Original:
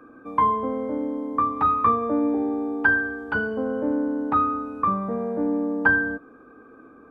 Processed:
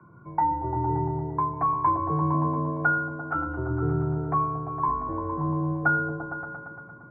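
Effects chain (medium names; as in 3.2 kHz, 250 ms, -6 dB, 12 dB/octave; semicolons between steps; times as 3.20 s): mistuned SSB -140 Hz 230–2100 Hz; delay with an opening low-pass 115 ms, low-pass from 200 Hz, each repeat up 1 oct, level 0 dB; trim -4 dB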